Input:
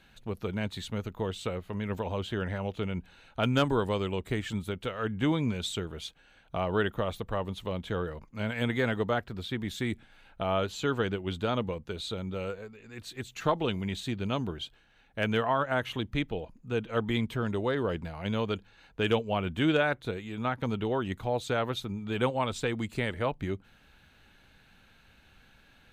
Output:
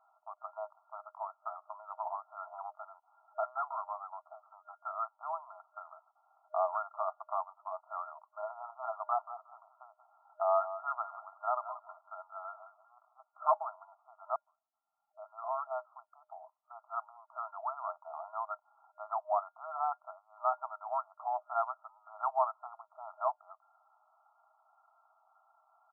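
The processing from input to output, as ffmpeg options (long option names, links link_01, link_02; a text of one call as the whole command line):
ffmpeg -i in.wav -filter_complex "[0:a]asettb=1/sr,asplit=3[link_01][link_02][link_03];[link_01]atrim=end=2.464[link_04];[link_02]atrim=start=2.46:end=4.85,asetpts=PTS-STARTPTS,afade=type=in:duration=0.004:curve=qsin,afade=type=out:start_time=2.386:duration=0.004:curve=qsin,aeval=exprs='(tanh(14.1*val(0)+0.55)-tanh(0.55))/14.1':channel_layout=same[link_05];[link_03]atrim=start=4.846[link_06];[link_04][link_05]acrossfade=duration=0.004:curve1=hsin:curve2=qsin[link_07];[link_07][link_06]acrossfade=duration=0.004:curve1=qsin:curve2=hsin,asplit=3[link_08][link_09][link_10];[link_08]afade=type=out:start_time=9.19:duration=0.02[link_11];[link_09]aecho=1:1:182|364:0.237|0.0403,afade=type=in:start_time=9.19:duration=0.02,afade=type=out:start_time=13.16:duration=0.02[link_12];[link_10]afade=type=in:start_time=13.16:duration=0.02[link_13];[link_11][link_12][link_13]amix=inputs=3:normalize=0,asplit=2[link_14][link_15];[link_14]atrim=end=14.36,asetpts=PTS-STARTPTS,afade=type=out:start_time=14.356:duration=0.004:curve=hsin[link_16];[link_15]atrim=start=14.36,asetpts=PTS-STARTPTS,afade=type=in:duration=3.55[link_17];[link_16][link_17]concat=n=2:v=0:a=1,afftfilt=real='re*between(b*sr/4096,620,1400)':imag='im*between(b*sr/4096,620,1400)':win_size=4096:overlap=0.75,volume=2dB" out.wav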